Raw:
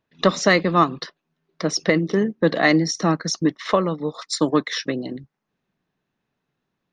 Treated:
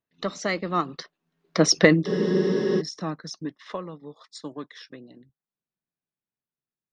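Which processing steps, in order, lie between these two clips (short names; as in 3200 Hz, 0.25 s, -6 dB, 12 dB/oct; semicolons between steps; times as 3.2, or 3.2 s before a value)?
Doppler pass-by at 1.7, 11 m/s, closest 2.5 m; spectral freeze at 2.1, 0.70 s; gain +4.5 dB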